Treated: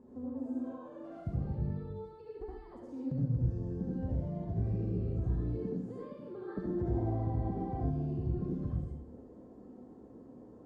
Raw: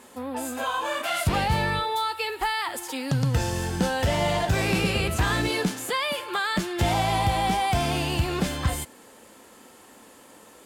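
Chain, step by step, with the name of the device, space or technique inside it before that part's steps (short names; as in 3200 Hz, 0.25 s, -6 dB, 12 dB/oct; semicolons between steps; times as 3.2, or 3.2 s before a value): television next door (compressor 5:1, threshold -35 dBFS, peak gain reduction 15 dB; LPF 300 Hz 12 dB/oct; reverb RT60 0.70 s, pre-delay 63 ms, DRR -5.5 dB); dynamic EQ 800 Hz, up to -5 dB, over -57 dBFS, Q 2; spectral gain 6.48–7.9, 240–2100 Hz +7 dB; resonant high shelf 3900 Hz +13 dB, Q 1.5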